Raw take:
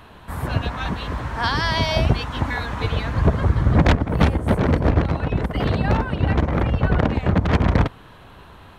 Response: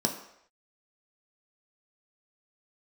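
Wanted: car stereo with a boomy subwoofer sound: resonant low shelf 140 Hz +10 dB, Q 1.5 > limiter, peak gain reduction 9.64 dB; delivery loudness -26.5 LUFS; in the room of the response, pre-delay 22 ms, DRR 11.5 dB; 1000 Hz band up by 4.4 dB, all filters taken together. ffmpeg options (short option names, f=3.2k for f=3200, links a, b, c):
-filter_complex "[0:a]equalizer=f=1k:t=o:g=5.5,asplit=2[a][b];[1:a]atrim=start_sample=2205,adelay=22[c];[b][c]afir=irnorm=-1:irlink=0,volume=-19.5dB[d];[a][d]amix=inputs=2:normalize=0,lowshelf=f=140:t=q:w=1.5:g=10,volume=-11dB,alimiter=limit=-16dB:level=0:latency=1"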